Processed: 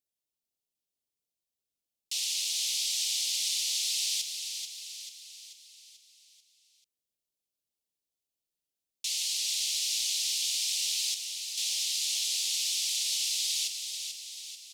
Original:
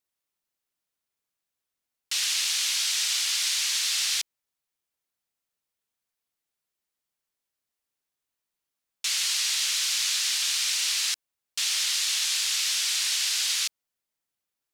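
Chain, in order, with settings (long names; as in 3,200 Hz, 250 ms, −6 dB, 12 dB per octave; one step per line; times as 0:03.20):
Butterworth band-reject 1,400 Hz, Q 0.65
repeating echo 438 ms, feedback 52%, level −7 dB
level −4.5 dB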